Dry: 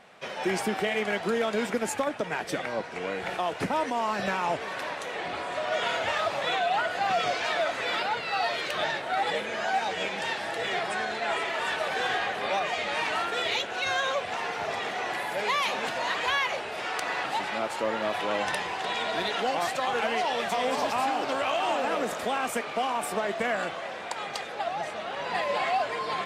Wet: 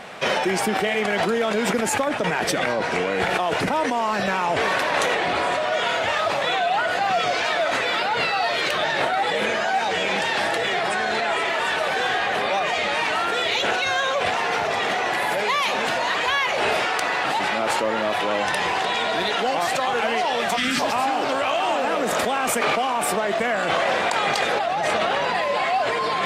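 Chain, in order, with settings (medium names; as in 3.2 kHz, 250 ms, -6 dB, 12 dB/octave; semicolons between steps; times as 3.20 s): time-frequency box 20.57–20.80 s, 360–1200 Hz -22 dB; in parallel at +2 dB: compressor with a negative ratio -36 dBFS, ratio -0.5; on the sum: trim +4 dB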